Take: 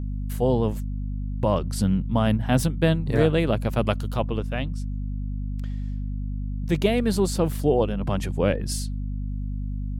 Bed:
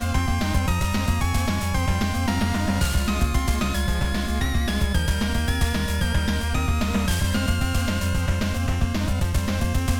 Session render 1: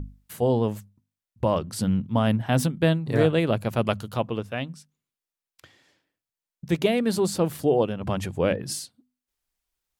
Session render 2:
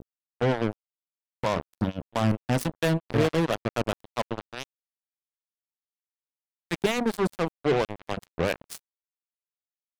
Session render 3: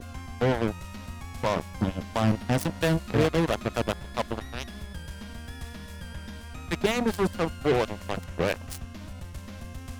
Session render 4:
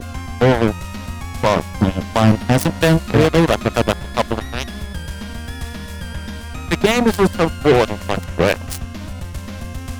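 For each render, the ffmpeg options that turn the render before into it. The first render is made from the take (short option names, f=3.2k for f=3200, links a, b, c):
-af "bandreject=f=50:t=h:w=6,bandreject=f=100:t=h:w=6,bandreject=f=150:t=h:w=6,bandreject=f=200:t=h:w=6,bandreject=f=250:t=h:w=6"
-filter_complex "[0:a]acrossover=split=520[a][b];[a]aeval=exprs='val(0)*(1-0.7/2+0.7/2*cos(2*PI*4.4*n/s))':c=same[c];[b]aeval=exprs='val(0)*(1-0.7/2-0.7/2*cos(2*PI*4.4*n/s))':c=same[d];[c][d]amix=inputs=2:normalize=0,acrusher=bits=3:mix=0:aa=0.5"
-filter_complex "[1:a]volume=-17dB[a];[0:a][a]amix=inputs=2:normalize=0"
-af "volume=11dB,alimiter=limit=-2dB:level=0:latency=1"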